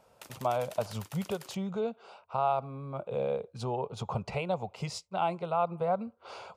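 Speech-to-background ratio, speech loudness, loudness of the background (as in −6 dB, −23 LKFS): 16.0 dB, −33.5 LKFS, −49.5 LKFS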